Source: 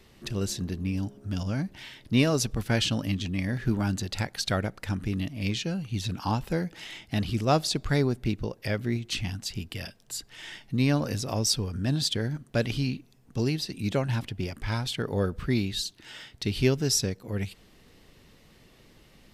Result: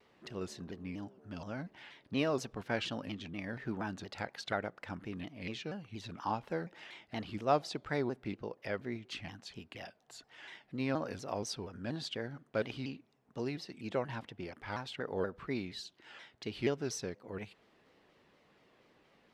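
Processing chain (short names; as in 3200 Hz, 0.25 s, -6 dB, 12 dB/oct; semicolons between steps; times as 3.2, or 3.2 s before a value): band-pass 880 Hz, Q 0.61; 9.8–10.33 bell 720 Hz +8 dB 0.26 oct; shaped vibrato saw down 4.2 Hz, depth 160 cents; gain -4 dB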